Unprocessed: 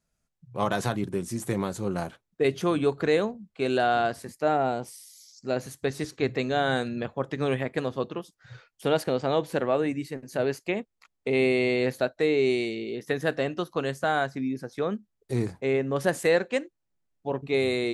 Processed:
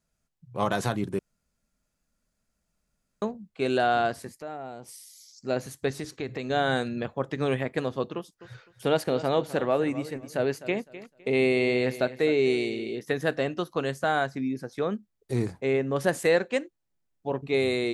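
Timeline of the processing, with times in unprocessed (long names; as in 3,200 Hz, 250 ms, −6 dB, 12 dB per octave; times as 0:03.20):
0:01.19–0:03.22: fill with room tone
0:04.28–0:04.89: downward compressor 2 to 1, threshold −45 dBFS
0:05.96–0:06.50: downward compressor 3 to 1, threshold −30 dBFS
0:08.15–0:12.99: repeating echo 255 ms, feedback 25%, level −15 dB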